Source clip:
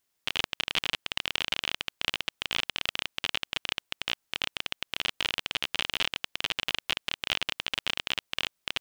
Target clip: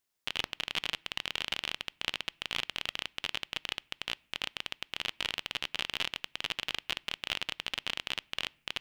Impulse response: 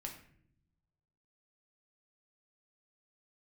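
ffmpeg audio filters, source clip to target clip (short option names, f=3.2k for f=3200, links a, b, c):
-filter_complex "[0:a]asplit=2[a][b];[1:a]atrim=start_sample=2205,lowpass=7.5k[c];[b][c]afir=irnorm=-1:irlink=0,volume=-17dB[d];[a][d]amix=inputs=2:normalize=0,volume=-5dB"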